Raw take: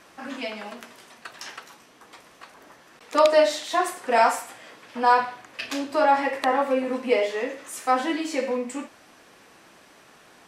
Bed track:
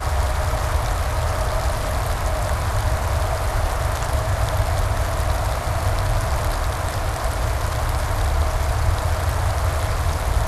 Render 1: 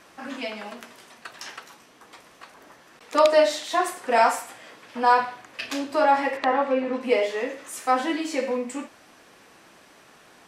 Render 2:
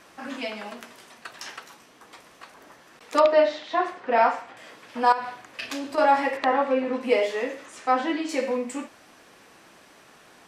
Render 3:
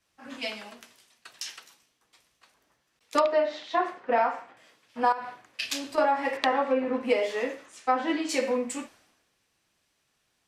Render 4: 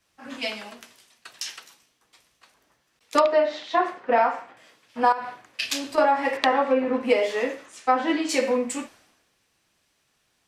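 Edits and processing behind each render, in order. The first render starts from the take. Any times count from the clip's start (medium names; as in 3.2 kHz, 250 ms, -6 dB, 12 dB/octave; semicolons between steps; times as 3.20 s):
6.37–7.01 s: low-pass 4.5 kHz
3.20–4.57 s: distance through air 240 m; 5.12–5.98 s: compression 4:1, threshold -27 dBFS; 7.66–8.29 s: distance through air 100 m
compression 16:1, threshold -22 dBFS, peak gain reduction 10 dB; three bands expanded up and down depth 100%
trim +4 dB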